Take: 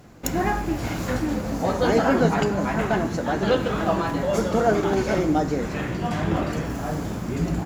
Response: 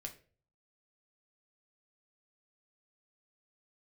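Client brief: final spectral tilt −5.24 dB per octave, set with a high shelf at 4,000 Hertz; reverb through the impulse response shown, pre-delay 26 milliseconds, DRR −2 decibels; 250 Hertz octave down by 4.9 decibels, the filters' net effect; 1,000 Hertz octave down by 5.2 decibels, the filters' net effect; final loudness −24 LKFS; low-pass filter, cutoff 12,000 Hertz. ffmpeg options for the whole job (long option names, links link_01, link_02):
-filter_complex "[0:a]lowpass=12000,equalizer=frequency=250:width_type=o:gain=-6.5,equalizer=frequency=1000:width_type=o:gain=-7.5,highshelf=frequency=4000:gain=5,asplit=2[link_01][link_02];[1:a]atrim=start_sample=2205,adelay=26[link_03];[link_02][link_03]afir=irnorm=-1:irlink=0,volume=5.5dB[link_04];[link_01][link_04]amix=inputs=2:normalize=0,volume=-1.5dB"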